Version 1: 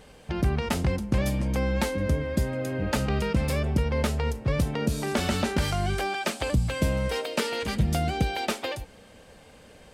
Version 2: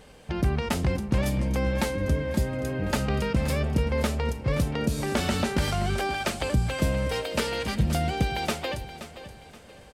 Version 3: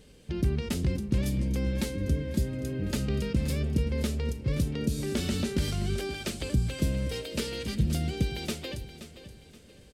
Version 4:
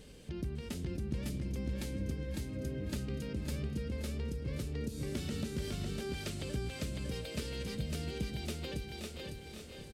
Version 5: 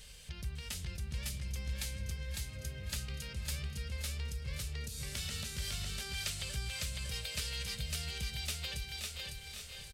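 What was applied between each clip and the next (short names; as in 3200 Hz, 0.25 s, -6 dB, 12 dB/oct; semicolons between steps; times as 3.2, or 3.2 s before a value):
feedback echo 0.525 s, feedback 34%, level -13 dB
EQ curve 390 Hz 0 dB, 790 Hz -15 dB, 3800 Hz -1 dB; gain -2 dB
compressor 2:1, threshold -47 dBFS, peak gain reduction 14.5 dB; on a send: feedback echo 0.553 s, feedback 35%, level -3 dB; on the sum: gain +1 dB
passive tone stack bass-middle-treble 10-0-10; gain +8.5 dB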